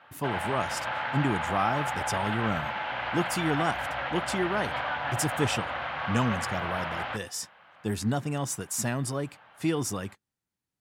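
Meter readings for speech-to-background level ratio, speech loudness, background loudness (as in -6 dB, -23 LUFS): 0.5 dB, -31.5 LUFS, -32.0 LUFS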